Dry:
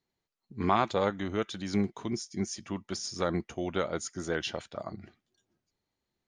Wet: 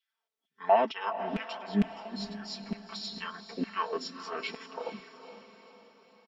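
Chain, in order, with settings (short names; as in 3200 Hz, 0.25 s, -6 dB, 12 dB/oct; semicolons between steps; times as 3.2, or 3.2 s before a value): formant shift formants -4 st; flange 1.1 Hz, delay 4.6 ms, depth 10 ms, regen -43%; LFO high-pass saw down 2.2 Hz 230–2500 Hz; comb 4.5 ms, depth 79%; on a send: diffused feedback echo 0.471 s, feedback 50%, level -11.5 dB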